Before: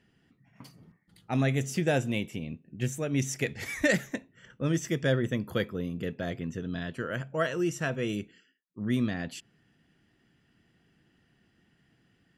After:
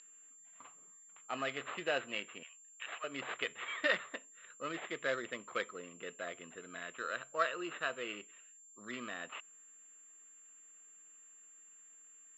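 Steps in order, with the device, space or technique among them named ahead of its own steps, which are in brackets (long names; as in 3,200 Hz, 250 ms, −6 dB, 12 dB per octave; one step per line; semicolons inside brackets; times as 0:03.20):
0:02.43–0:03.04: inverse Chebyshev high-pass filter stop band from 210 Hz, stop band 70 dB
toy sound module (linearly interpolated sample-rate reduction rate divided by 8×; switching amplifier with a slow clock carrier 7,300 Hz; loudspeaker in its box 670–4,500 Hz, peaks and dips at 830 Hz −6 dB, 1,200 Hz +9 dB, 2,800 Hz +8 dB, 4,100 Hz +9 dB)
level −2.5 dB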